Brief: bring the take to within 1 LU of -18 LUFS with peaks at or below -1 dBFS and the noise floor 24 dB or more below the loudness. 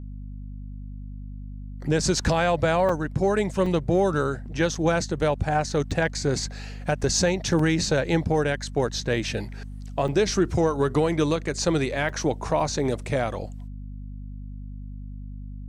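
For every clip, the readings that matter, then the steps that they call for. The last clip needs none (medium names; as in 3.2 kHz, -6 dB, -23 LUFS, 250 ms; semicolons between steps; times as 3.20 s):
dropouts 8; longest dropout 3.7 ms; hum 50 Hz; highest harmonic 250 Hz; hum level -34 dBFS; loudness -24.5 LUFS; peak level -11.5 dBFS; loudness target -18.0 LUFS
-> interpolate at 2.89/3.66/4.75/5.91/7.59/10.08/12.09/12.60 s, 3.7 ms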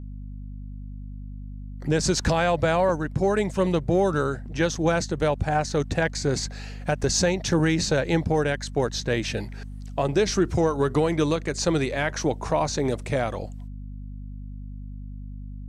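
dropouts 0; hum 50 Hz; highest harmonic 250 Hz; hum level -34 dBFS
-> hum notches 50/100/150/200/250 Hz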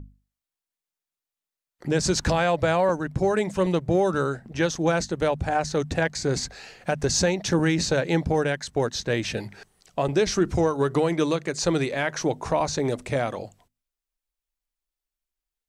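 hum not found; loudness -24.5 LUFS; peak level -10.5 dBFS; loudness target -18.0 LUFS
-> trim +6.5 dB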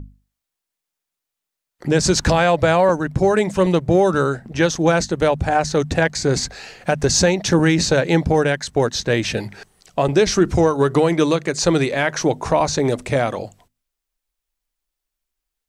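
loudness -18.0 LUFS; peak level -4.0 dBFS; noise floor -83 dBFS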